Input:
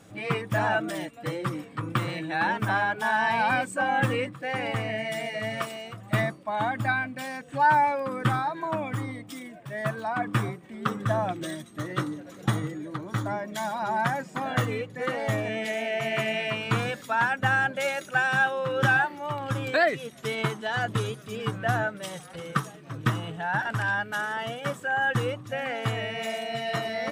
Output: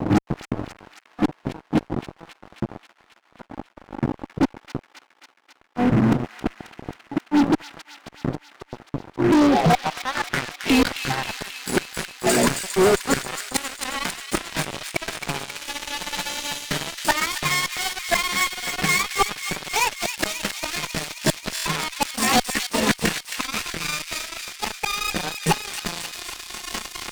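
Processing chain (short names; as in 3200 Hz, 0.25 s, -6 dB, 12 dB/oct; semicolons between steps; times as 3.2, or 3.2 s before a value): gliding pitch shift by +8 st starting unshifted; added harmonics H 3 -18 dB, 8 -20 dB, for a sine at -11 dBFS; notches 60/120/180 Hz; flipped gate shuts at -29 dBFS, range -28 dB; low-pass sweep 290 Hz -> 8000 Hz, 9.07–11.21; fuzz box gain 51 dB, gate -57 dBFS; thin delay 0.269 s, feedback 71%, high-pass 2100 Hz, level -6 dB; stuck buffer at 21.54, samples 1024, times 4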